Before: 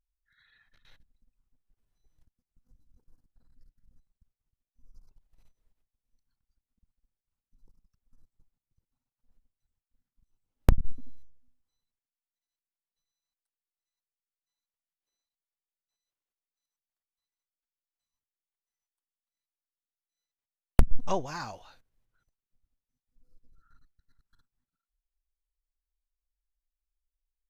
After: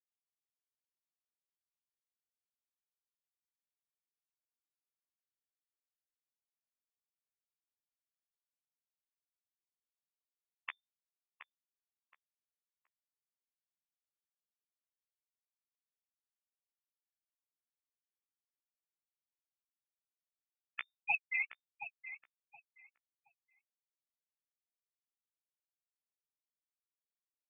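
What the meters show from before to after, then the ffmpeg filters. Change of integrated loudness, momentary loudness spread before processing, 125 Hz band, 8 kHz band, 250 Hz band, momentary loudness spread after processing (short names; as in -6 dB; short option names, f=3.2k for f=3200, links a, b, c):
-7.5 dB, 14 LU, under -40 dB, n/a, under -40 dB, 16 LU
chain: -filter_complex "[0:a]highpass=f=1.1k:w=0.5412,highpass=f=1.1k:w=1.3066,aemphasis=mode=production:type=riaa,afftfilt=real='re*gte(hypot(re,im),0.0501)':imag='im*gte(hypot(re,im),0.0501)':win_size=1024:overlap=0.75,acompressor=threshold=-36dB:ratio=16,lowpass=f=3.1k:t=q:w=0.5098,lowpass=f=3.1k:t=q:w=0.6013,lowpass=f=3.1k:t=q:w=0.9,lowpass=f=3.1k:t=q:w=2.563,afreqshift=-3600,flanger=delay=8.5:depth=6.9:regen=5:speed=1.8:shape=sinusoidal,asplit=2[a][b];[b]adelay=722,lowpass=f=2k:p=1,volume=-9.5dB,asplit=2[c][d];[d]adelay=722,lowpass=f=2k:p=1,volume=0.26,asplit=2[e][f];[f]adelay=722,lowpass=f=2k:p=1,volume=0.26[g];[a][c][e][g]amix=inputs=4:normalize=0,volume=14dB"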